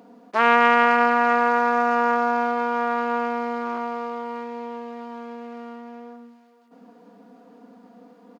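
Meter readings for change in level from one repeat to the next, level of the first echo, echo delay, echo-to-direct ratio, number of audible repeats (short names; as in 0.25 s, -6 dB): -7.5 dB, -17.0 dB, 0.467 s, -16.5 dB, 2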